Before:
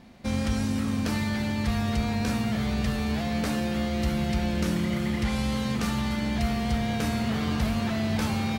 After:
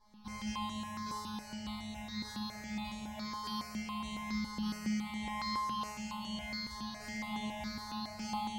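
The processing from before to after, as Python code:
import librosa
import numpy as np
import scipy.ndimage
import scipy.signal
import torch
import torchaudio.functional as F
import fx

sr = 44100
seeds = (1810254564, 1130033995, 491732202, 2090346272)

p1 = fx.curve_eq(x, sr, hz=(120.0, 210.0, 320.0, 880.0, 1400.0, 4900.0, 10000.0), db=(0, -5, -24, 10, -7, 3, -5))
p2 = fx.rider(p1, sr, range_db=10, speed_s=0.5)
p3 = fx.comb_fb(p2, sr, f0_hz=210.0, decay_s=1.4, harmonics='all', damping=0.0, mix_pct=100)
p4 = p3 + fx.echo_split(p3, sr, split_hz=1200.0, low_ms=132, high_ms=203, feedback_pct=52, wet_db=-8, dry=0)
p5 = fx.phaser_held(p4, sr, hz=7.2, low_hz=710.0, high_hz=5000.0)
y = p5 * 10.0 ** (13.5 / 20.0)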